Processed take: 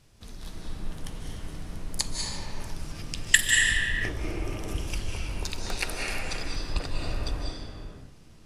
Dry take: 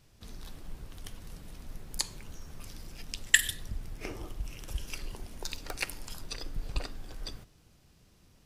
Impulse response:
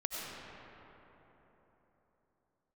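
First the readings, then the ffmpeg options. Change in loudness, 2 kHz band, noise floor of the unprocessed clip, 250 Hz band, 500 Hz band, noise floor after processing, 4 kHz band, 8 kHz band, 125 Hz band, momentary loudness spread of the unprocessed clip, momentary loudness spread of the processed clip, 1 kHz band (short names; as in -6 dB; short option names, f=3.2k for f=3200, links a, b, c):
+6.0 dB, +7.5 dB, -62 dBFS, +9.5 dB, +9.0 dB, -50 dBFS, +6.0 dB, +5.5 dB, +8.5 dB, 17 LU, 19 LU, +8.5 dB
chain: -filter_complex "[1:a]atrim=start_sample=2205,afade=t=out:st=0.41:d=0.01,atrim=end_sample=18522,asetrate=22050,aresample=44100[a];[0:a][a]afir=irnorm=-1:irlink=0,volume=1dB"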